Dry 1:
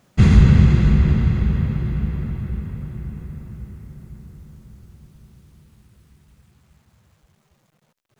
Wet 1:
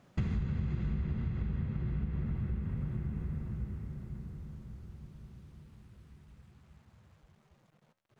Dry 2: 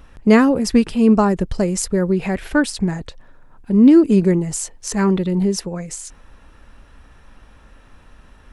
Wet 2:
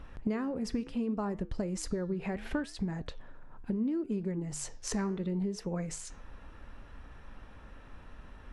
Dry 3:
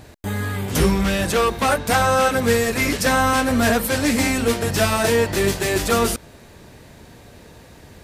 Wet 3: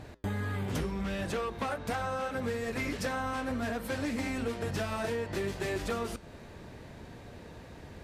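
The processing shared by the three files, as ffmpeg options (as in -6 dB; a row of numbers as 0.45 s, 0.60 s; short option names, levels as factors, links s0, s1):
-af "lowpass=f=2900:p=1,acompressor=threshold=0.0447:ratio=12,flanger=delay=6.6:depth=8.3:regen=-87:speed=0.7:shape=triangular,volume=1.19"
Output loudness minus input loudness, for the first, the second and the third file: -19.5 LU, -18.5 LU, -15.0 LU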